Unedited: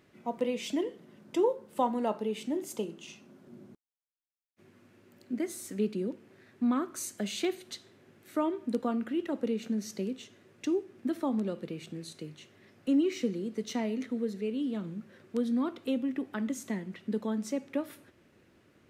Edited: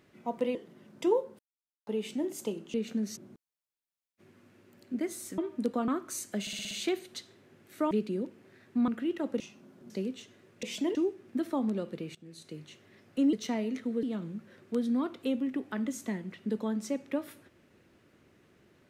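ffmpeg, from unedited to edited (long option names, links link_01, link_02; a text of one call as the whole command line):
ffmpeg -i in.wav -filter_complex "[0:a]asplit=22[link_01][link_02][link_03][link_04][link_05][link_06][link_07][link_08][link_09][link_10][link_11][link_12][link_13][link_14][link_15][link_16][link_17][link_18][link_19][link_20][link_21][link_22];[link_01]atrim=end=0.552[link_23];[link_02]atrim=start=0.868:end=1.71,asetpts=PTS-STARTPTS,afade=type=out:start_time=0.838:duration=0.004:curve=hsin[link_24];[link_03]atrim=start=1.71:end=2.19,asetpts=PTS-STARTPTS,volume=0[link_25];[link_04]atrim=start=2.19:end=3.062,asetpts=PTS-STARTPTS,afade=type=in:duration=0.004:curve=hsin[link_26];[link_05]atrim=start=9.488:end=9.922[link_27];[link_06]atrim=start=3.558:end=5.772[link_28];[link_07]atrim=start=8.468:end=8.972[link_29];[link_08]atrim=start=6.738:end=7.332[link_30];[link_09]atrim=start=7.268:end=7.332[link_31];[link_10]atrim=start=7.268:end=7.332[link_32];[link_11]atrim=start=7.268:end=7.332[link_33];[link_12]atrim=start=7.268:end=7.332[link_34];[link_13]atrim=start=7.268:end=8.472[link_35];[link_14]atrim=start=5.768:end=6.742[link_36];[link_15]atrim=start=8.968:end=9.492[link_37];[link_16]atrim=start=3.058:end=3.562[link_38];[link_17]atrim=start=9.918:end=10.652[link_39];[link_18]atrim=start=0.548:end=0.872[link_40];[link_19]atrim=start=10.648:end=11.85,asetpts=PTS-STARTPTS,afade=type=out:start_time=1.198:duration=0.004:curve=hsin:silence=0.11885[link_41];[link_20]atrim=start=11.85:end=13.032,asetpts=PTS-STARTPTS,afade=type=in:duration=0.47:silence=0.11885[link_42];[link_21]atrim=start=13.588:end=14.292[link_43];[link_22]atrim=start=14.648[link_44];[link_24][link_25][link_26]concat=n=3:v=0:a=1[link_45];[link_23][link_45]acrossfade=duration=0.004:curve1=hsin:curve2=hsin[link_46];[link_46][link_27]acrossfade=duration=0.004:curve1=hsin:curve2=hsin[link_47];[link_47][link_28]acrossfade=duration=0.004:curve1=hsin:curve2=hsin[link_48];[link_48][link_29]acrossfade=duration=0.004:curve1=hsin:curve2=hsin[link_49];[link_49][link_30]acrossfade=duration=0.004:curve1=hsin:curve2=hsin[link_50];[link_50][link_31]acrossfade=duration=0.004:curve1=hsin:curve2=hsin[link_51];[link_51][link_32]acrossfade=duration=0.004:curve1=hsin:curve2=hsin[link_52];[link_52][link_33]acrossfade=duration=0.004:curve1=hsin:curve2=hsin[link_53];[link_53][link_34]acrossfade=duration=0.004:curve1=hsin:curve2=hsin[link_54];[link_54][link_35]acrossfade=duration=0.004:curve1=hsin:curve2=hsin[link_55];[link_55][link_36]acrossfade=duration=0.004:curve1=hsin:curve2=hsin[link_56];[link_56][link_37]acrossfade=duration=0.004:curve1=hsin:curve2=hsin[link_57];[link_57][link_38]acrossfade=duration=0.004:curve1=hsin:curve2=hsin[link_58];[link_58][link_39]acrossfade=duration=0.004:curve1=hsin:curve2=hsin[link_59];[link_59][link_40]acrossfade=duration=0.004:curve1=hsin:curve2=hsin[link_60];[link_41][link_42]concat=n=2:v=0:a=1[link_61];[link_60][link_61]acrossfade=duration=0.004:curve1=hsin:curve2=hsin[link_62];[link_62][link_43]acrossfade=duration=0.004:curve1=hsin:curve2=hsin[link_63];[link_63][link_44]acrossfade=duration=0.004:curve1=hsin:curve2=hsin" out.wav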